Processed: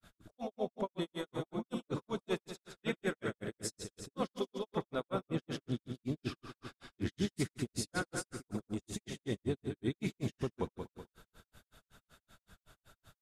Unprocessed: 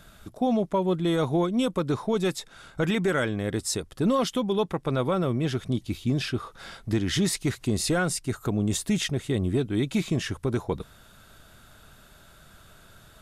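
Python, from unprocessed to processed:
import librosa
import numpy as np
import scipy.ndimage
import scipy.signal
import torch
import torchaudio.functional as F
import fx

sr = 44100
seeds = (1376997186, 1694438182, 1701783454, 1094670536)

y = fx.echo_heads(x, sr, ms=64, heads='first and second', feedback_pct=53, wet_db=-8)
y = fx.granulator(y, sr, seeds[0], grain_ms=132.0, per_s=5.3, spray_ms=100.0, spread_st=0)
y = fx.hpss(y, sr, part='harmonic', gain_db=-12)
y = y * librosa.db_to_amplitude(-7.5)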